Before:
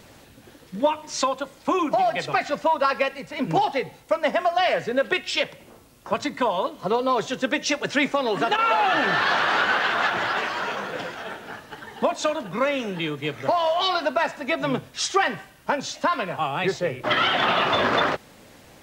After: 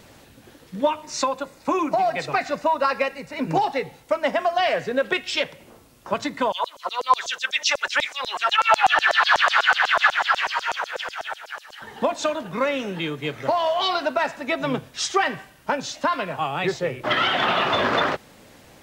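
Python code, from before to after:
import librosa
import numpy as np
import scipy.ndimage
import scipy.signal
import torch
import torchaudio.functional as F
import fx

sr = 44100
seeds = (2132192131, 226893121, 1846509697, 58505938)

y = fx.notch(x, sr, hz=3200.0, q=6.5, at=(1.04, 3.83))
y = fx.filter_lfo_highpass(y, sr, shape='saw_down', hz=8.1, low_hz=590.0, high_hz=7200.0, q=3.3, at=(6.52, 11.82))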